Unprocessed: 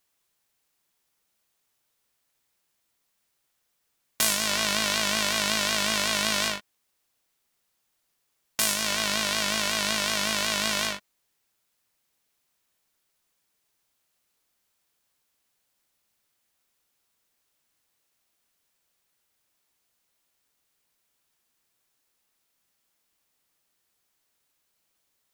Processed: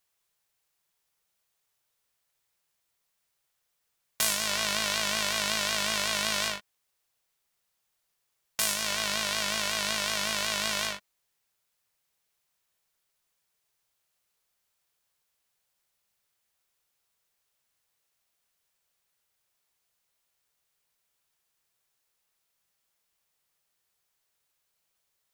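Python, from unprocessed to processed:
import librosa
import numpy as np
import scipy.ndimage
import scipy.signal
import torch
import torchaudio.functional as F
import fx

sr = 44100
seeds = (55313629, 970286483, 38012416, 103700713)

y = fx.peak_eq(x, sr, hz=270.0, db=-10.5, octaves=0.51)
y = y * librosa.db_to_amplitude(-3.0)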